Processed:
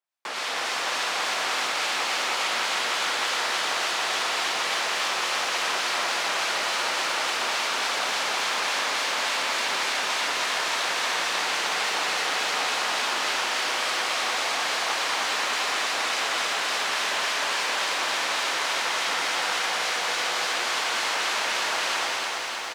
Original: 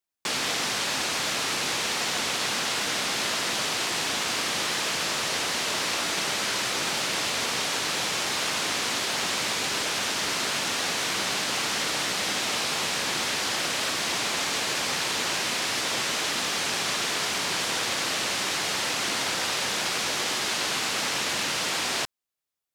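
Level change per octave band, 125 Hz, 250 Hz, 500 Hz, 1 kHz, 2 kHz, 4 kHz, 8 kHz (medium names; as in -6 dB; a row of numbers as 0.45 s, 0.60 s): under -10 dB, -7.0 dB, +1.0 dB, +4.5 dB, +3.0 dB, 0.0 dB, -3.0 dB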